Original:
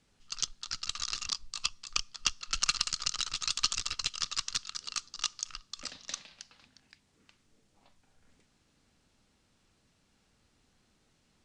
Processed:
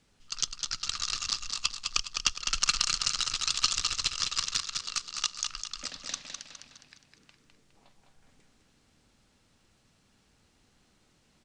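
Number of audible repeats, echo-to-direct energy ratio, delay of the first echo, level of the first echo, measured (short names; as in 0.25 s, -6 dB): 5, -4.5 dB, 0.206 s, -5.5 dB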